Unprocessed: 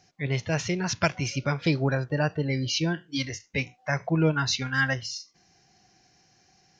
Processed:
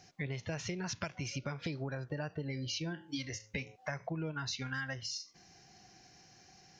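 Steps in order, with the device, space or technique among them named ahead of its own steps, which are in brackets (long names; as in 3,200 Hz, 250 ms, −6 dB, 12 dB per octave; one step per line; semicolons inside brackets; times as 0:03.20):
0:02.45–0:03.76: hum removal 107.5 Hz, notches 10
serial compression, leveller first (downward compressor 2 to 1, threshold −27 dBFS, peak gain reduction 5.5 dB; downward compressor 5 to 1, threshold −39 dBFS, peak gain reduction 15 dB)
level +2 dB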